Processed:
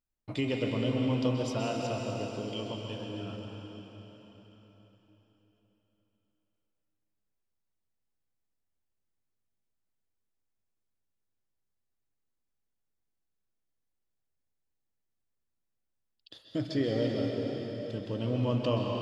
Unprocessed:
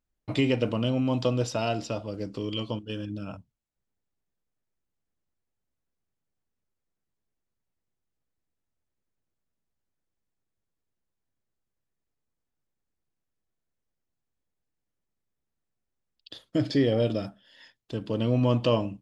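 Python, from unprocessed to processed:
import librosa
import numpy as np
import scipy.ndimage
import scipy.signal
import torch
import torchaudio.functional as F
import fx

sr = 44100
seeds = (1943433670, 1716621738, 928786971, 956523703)

y = fx.rev_plate(x, sr, seeds[0], rt60_s=4.2, hf_ratio=1.0, predelay_ms=115, drr_db=-0.5)
y = y * librosa.db_to_amplitude(-7.0)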